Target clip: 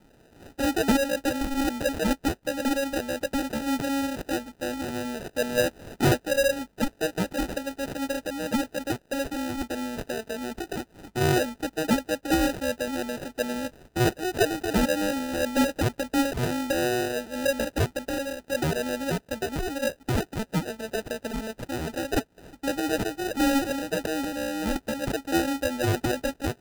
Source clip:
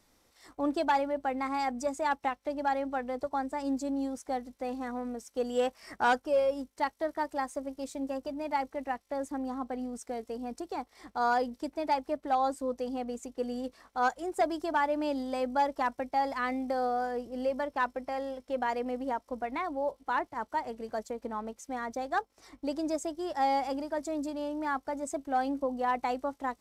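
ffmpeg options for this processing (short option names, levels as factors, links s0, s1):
-af "aemphasis=mode=production:type=50fm,acrusher=samples=40:mix=1:aa=0.000001,volume=1.78"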